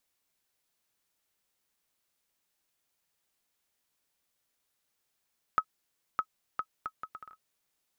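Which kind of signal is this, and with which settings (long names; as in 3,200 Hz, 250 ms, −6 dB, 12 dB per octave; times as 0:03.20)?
bouncing ball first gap 0.61 s, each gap 0.66, 1,280 Hz, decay 64 ms −14 dBFS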